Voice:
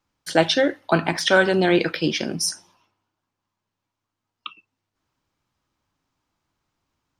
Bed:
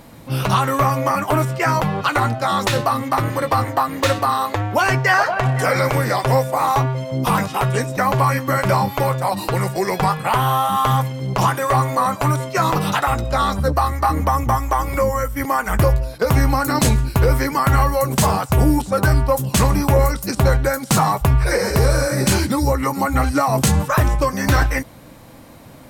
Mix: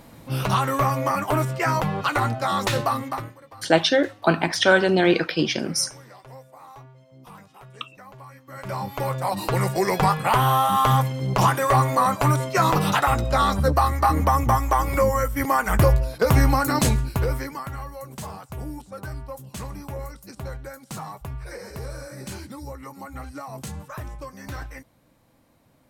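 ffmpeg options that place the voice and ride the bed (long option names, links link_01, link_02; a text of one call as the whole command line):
ffmpeg -i stem1.wav -i stem2.wav -filter_complex "[0:a]adelay=3350,volume=0dB[link_01];[1:a]volume=21.5dB,afade=type=out:start_time=2.92:duration=0.43:silence=0.0707946,afade=type=in:start_time=8.47:duration=1.24:silence=0.0501187,afade=type=out:start_time=16.47:duration=1.24:silence=0.133352[link_02];[link_01][link_02]amix=inputs=2:normalize=0" out.wav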